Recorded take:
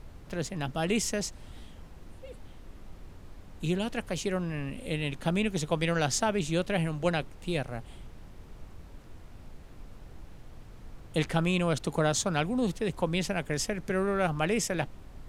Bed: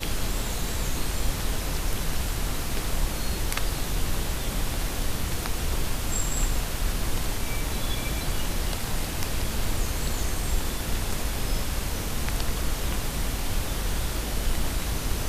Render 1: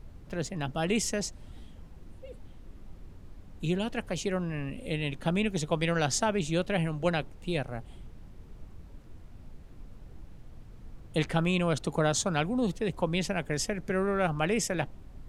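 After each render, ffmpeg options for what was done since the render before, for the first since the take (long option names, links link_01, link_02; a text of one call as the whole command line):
ffmpeg -i in.wav -af "afftdn=noise_reduction=6:noise_floor=-49" out.wav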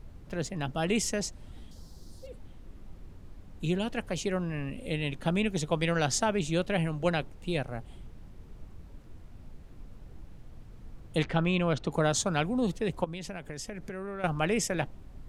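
ffmpeg -i in.wav -filter_complex "[0:a]asettb=1/sr,asplit=3[link_01][link_02][link_03];[link_01]atrim=end=1.714[link_04];[link_02]atrim=start=1.71:end=2.27,asetpts=PTS-STARTPTS,afade=type=in:duration=0.004:curve=qsin,afade=type=out:start_time=0.556:duration=0.004:curve=qsin,highshelf=frequency=3500:width_type=q:width=3:gain=10.5[link_05];[link_03]atrim=start=2.266[link_06];[link_04][link_05]acrossfade=duration=0.004:curve1=hsin:curve2=qsin[link_07];[link_07][link_06]acrossfade=duration=0.004:curve1=qsin:curve2=hsin,asettb=1/sr,asplit=3[link_08][link_09][link_10];[link_08]atrim=end=11.234[link_11];[link_09]atrim=start=11.23:end=11.91,asetpts=PTS-STARTPTS,afade=type=in:duration=0.004:curve=qsin,afade=type=out:start_time=0.676:duration=0.004:curve=qsin,lowpass=4400[link_12];[link_10]atrim=start=11.906[link_13];[link_11][link_12]acrossfade=duration=0.004:curve1=hsin:curve2=qsin[link_14];[link_14][link_13]acrossfade=duration=0.004:curve1=qsin:curve2=hsin,asettb=1/sr,asplit=3[link_15][link_16][link_17];[link_15]atrim=end=13.044[link_18];[link_16]atrim=start=13.04:end=14.24,asetpts=PTS-STARTPTS,afade=type=in:duration=0.004:curve=qsin,afade=type=out:start_time=1.196:duration=0.004:curve=qsin,acompressor=threshold=-36dB:ratio=4:attack=3.2:release=140:knee=1:detection=peak[link_19];[link_17]atrim=start=14.236[link_20];[link_18][link_19]acrossfade=duration=0.004:curve1=hsin:curve2=qsin[link_21];[link_21][link_20]acrossfade=duration=0.004:curve1=qsin:curve2=hsin" out.wav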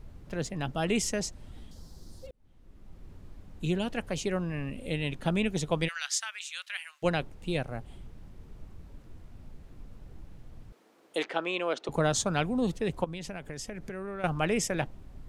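ffmpeg -i in.wav -filter_complex "[0:a]asplit=3[link_01][link_02][link_03];[link_01]afade=type=out:start_time=5.87:duration=0.02[link_04];[link_02]highpass=frequency=1500:width=0.5412,highpass=frequency=1500:width=1.3066,afade=type=in:start_time=5.87:duration=0.02,afade=type=out:start_time=7.02:duration=0.02[link_05];[link_03]afade=type=in:start_time=7.02:duration=0.02[link_06];[link_04][link_05][link_06]amix=inputs=3:normalize=0,asettb=1/sr,asplit=3[link_07][link_08][link_09];[link_07]atrim=end=10.724[link_10];[link_08]atrim=start=10.72:end=11.89,asetpts=PTS-STARTPTS,afade=type=in:duration=0.004:curve=qsin,afade=type=out:start_time=1.166:duration=0.004:curve=qsin,highpass=frequency=320:width=0.5412,highpass=frequency=320:width=1.3066[link_11];[link_09]atrim=start=11.886[link_12];[link_10][link_11]acrossfade=duration=0.004:curve1=hsin:curve2=qsin[link_13];[link_13][link_12]acrossfade=duration=0.004:curve1=qsin:curve2=hsin,asplit=2[link_14][link_15];[link_14]atrim=end=2.31,asetpts=PTS-STARTPTS,afade=type=out:start_time=2.306:duration=0.004:curve=hsin[link_16];[link_15]atrim=start=2.31,asetpts=PTS-STARTPTS,afade=type=in:duration=0.84[link_17];[link_16][link_17]concat=n=2:v=0:a=1" out.wav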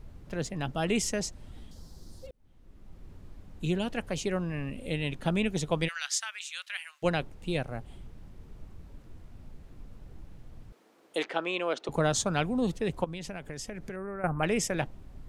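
ffmpeg -i in.wav -filter_complex "[0:a]asettb=1/sr,asplit=3[link_01][link_02][link_03];[link_01]atrim=end=13.964[link_04];[link_02]atrim=start=13.96:end=14.43,asetpts=PTS-STARTPTS,afade=type=in:duration=0.004:curve=qsin,afade=type=out:start_time=0.466:duration=0.004:curve=qsin,asuperstop=centerf=4400:order=8:qfactor=0.69[link_05];[link_03]atrim=start=14.426[link_06];[link_04][link_05]acrossfade=duration=0.004:curve1=hsin:curve2=qsin[link_07];[link_07][link_06]acrossfade=duration=0.004:curve1=qsin:curve2=hsin" out.wav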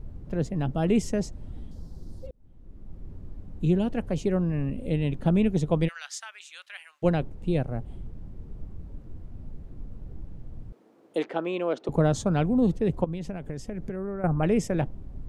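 ffmpeg -i in.wav -af "tiltshelf=frequency=870:gain=8" out.wav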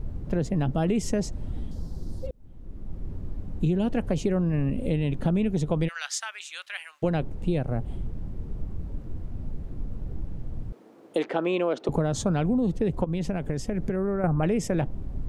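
ffmpeg -i in.wav -filter_complex "[0:a]asplit=2[link_01][link_02];[link_02]alimiter=limit=-21dB:level=0:latency=1:release=33,volume=1dB[link_03];[link_01][link_03]amix=inputs=2:normalize=0,acompressor=threshold=-21dB:ratio=6" out.wav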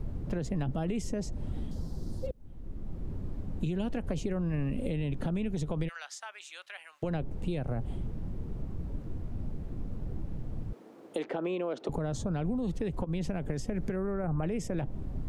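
ffmpeg -i in.wav -filter_complex "[0:a]alimiter=limit=-18.5dB:level=0:latency=1:release=77,acrossover=split=92|900[link_01][link_02][link_03];[link_01]acompressor=threshold=-33dB:ratio=4[link_04];[link_02]acompressor=threshold=-31dB:ratio=4[link_05];[link_03]acompressor=threshold=-45dB:ratio=4[link_06];[link_04][link_05][link_06]amix=inputs=3:normalize=0" out.wav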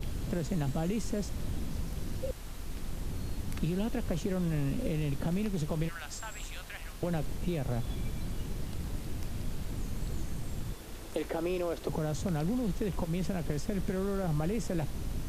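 ffmpeg -i in.wav -i bed.wav -filter_complex "[1:a]volume=-17dB[link_01];[0:a][link_01]amix=inputs=2:normalize=0" out.wav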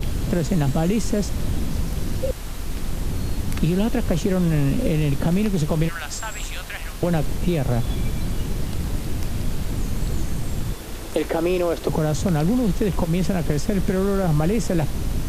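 ffmpeg -i in.wav -af "volume=11.5dB" out.wav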